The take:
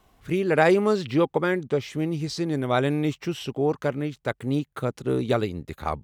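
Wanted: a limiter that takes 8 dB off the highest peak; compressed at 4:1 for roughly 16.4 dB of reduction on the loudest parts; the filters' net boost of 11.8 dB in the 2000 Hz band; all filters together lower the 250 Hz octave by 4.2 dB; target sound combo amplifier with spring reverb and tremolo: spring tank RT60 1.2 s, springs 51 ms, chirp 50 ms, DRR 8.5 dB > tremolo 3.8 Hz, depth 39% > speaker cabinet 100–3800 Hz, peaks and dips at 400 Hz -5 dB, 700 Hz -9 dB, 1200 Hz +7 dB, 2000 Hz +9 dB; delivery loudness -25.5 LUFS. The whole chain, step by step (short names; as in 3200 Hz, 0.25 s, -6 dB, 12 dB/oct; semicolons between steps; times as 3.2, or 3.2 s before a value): bell 250 Hz -4.5 dB; bell 2000 Hz +8.5 dB; compressor 4:1, threshold -32 dBFS; limiter -24.5 dBFS; spring tank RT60 1.2 s, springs 51 ms, chirp 50 ms, DRR 8.5 dB; tremolo 3.8 Hz, depth 39%; speaker cabinet 100–3800 Hz, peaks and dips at 400 Hz -5 dB, 700 Hz -9 dB, 1200 Hz +7 dB, 2000 Hz +9 dB; gain +11.5 dB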